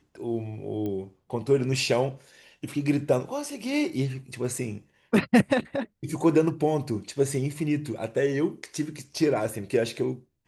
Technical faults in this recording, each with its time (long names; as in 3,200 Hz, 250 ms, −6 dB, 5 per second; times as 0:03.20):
0:00.86: click −22 dBFS